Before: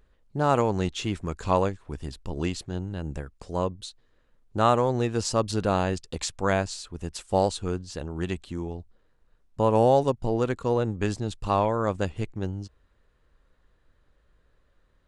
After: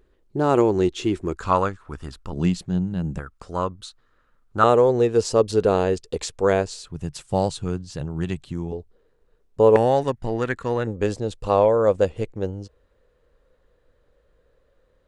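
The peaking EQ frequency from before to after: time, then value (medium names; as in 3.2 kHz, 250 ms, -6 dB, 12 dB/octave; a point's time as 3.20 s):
peaking EQ +13.5 dB 0.59 oct
360 Hz
from 1.36 s 1.3 kHz
from 2.33 s 180 Hz
from 3.19 s 1.3 kHz
from 4.64 s 440 Hz
from 6.84 s 140 Hz
from 8.72 s 440 Hz
from 9.76 s 1.8 kHz
from 10.87 s 500 Hz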